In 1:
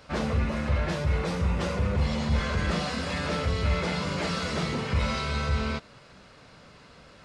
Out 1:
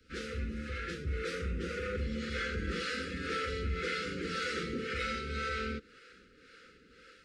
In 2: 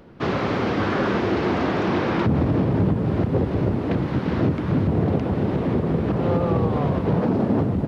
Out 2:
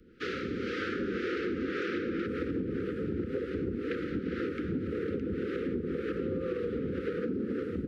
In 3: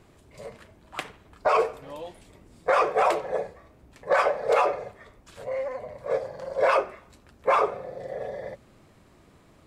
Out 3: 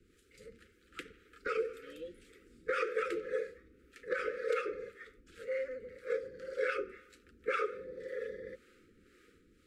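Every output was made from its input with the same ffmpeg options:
-filter_complex "[0:a]acrossover=split=240|2600[a][b][c];[b]dynaudnorm=f=710:g=3:m=6.5dB[d];[a][d][c]amix=inputs=3:normalize=0,acrossover=split=400[e][f];[e]aeval=exprs='val(0)*(1-0.7/2+0.7/2*cos(2*PI*1.9*n/s))':c=same[g];[f]aeval=exprs='val(0)*(1-0.7/2-0.7/2*cos(2*PI*1.9*n/s))':c=same[h];[g][h]amix=inputs=2:normalize=0,asuperstop=centerf=810:order=20:qfactor=1.1,equalizer=f=130:w=1.6:g=-12,acompressor=threshold=-25dB:ratio=6,volume=-4.5dB"

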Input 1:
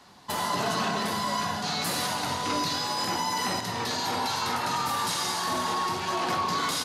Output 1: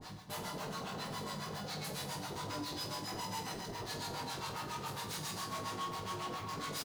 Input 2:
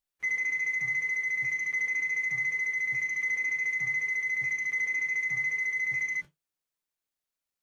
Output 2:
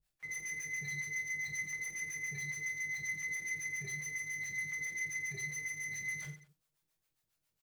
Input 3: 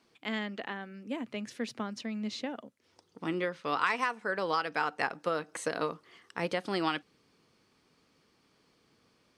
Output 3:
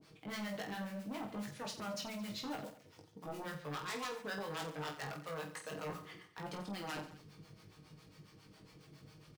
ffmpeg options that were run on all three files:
-filter_complex "[0:a]firequalizer=gain_entry='entry(110,0);entry(240,-15);entry(1000,-20)':delay=0.05:min_phase=1,acrusher=bits=6:mode=log:mix=0:aa=0.000001,aecho=1:1:6.4:0.46,areverse,acompressor=threshold=-56dB:ratio=10,areverse,acrossover=split=560[a][b];[a]aeval=exprs='val(0)*(1-1/2+1/2*cos(2*PI*7.3*n/s))':c=same[c];[b]aeval=exprs='val(0)*(1-1/2-1/2*cos(2*PI*7.3*n/s))':c=same[d];[c][d]amix=inputs=2:normalize=0,aeval=exprs='0.00316*sin(PI/2*3.55*val(0)/0.00316)':c=same,lowshelf=f=130:g=-11,asplit=2[e][f];[f]aecho=0:1:20|48|87.2|142.1|218.9:0.631|0.398|0.251|0.158|0.1[g];[e][g]amix=inputs=2:normalize=0,volume=11.5dB"

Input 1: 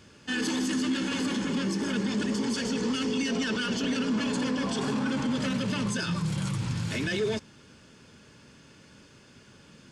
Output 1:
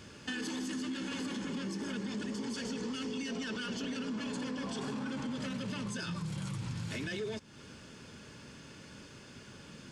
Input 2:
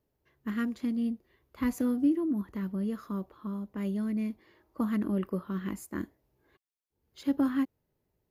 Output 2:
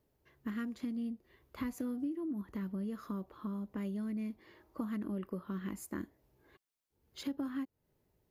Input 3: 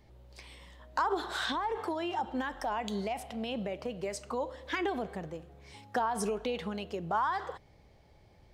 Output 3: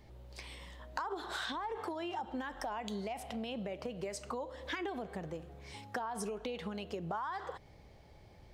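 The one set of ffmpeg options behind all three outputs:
-af "acompressor=threshold=-40dB:ratio=4,volume=2.5dB"

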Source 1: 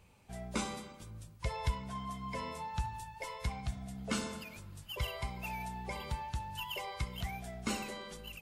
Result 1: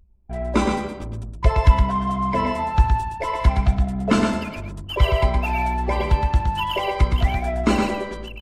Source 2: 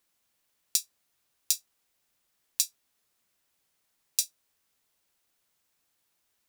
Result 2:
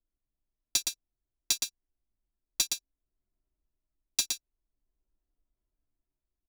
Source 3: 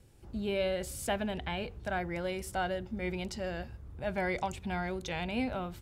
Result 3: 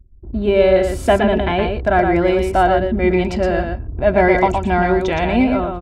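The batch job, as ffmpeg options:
-filter_complex "[0:a]asplit=2[a][b];[b]asoftclip=type=tanh:threshold=-14dB,volume=-3.5dB[c];[a][c]amix=inputs=2:normalize=0,dynaudnorm=f=100:g=11:m=4dB,anlmdn=0.0631,equalizer=f=110:w=1.9:g=-3,aecho=1:1:3:0.45,acontrast=37,lowpass=f=1.1k:p=1,asplit=2[d][e];[e]aecho=0:1:117:0.562[f];[d][f]amix=inputs=2:normalize=0,volume=6dB"

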